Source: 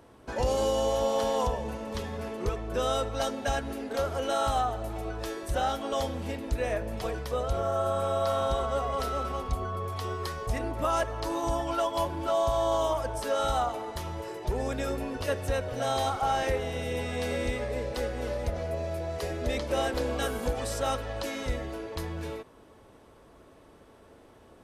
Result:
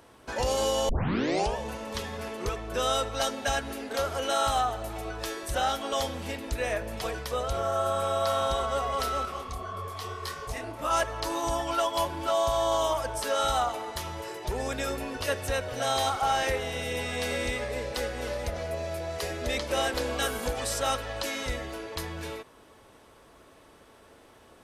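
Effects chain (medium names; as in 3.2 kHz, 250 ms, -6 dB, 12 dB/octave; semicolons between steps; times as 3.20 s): tilt shelf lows -4.5 dB, about 900 Hz; 0.89 s: tape start 0.67 s; 9.25–10.91 s: detune thickener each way 60 cents; trim +1.5 dB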